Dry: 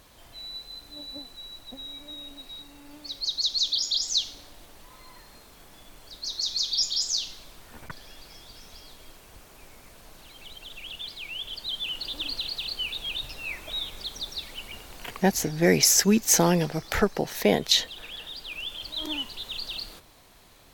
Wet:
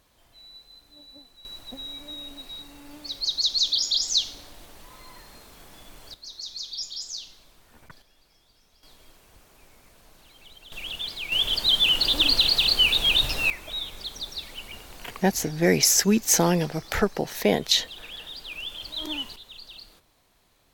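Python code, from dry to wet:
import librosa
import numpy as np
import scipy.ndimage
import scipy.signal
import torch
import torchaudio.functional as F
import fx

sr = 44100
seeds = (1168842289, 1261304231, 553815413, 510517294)

y = fx.gain(x, sr, db=fx.steps((0.0, -9.0), (1.45, 2.5), (6.14, -8.0), (8.02, -15.0), (8.83, -5.0), (10.72, 5.0), (11.32, 12.0), (13.5, 0.0), (19.36, -9.5)))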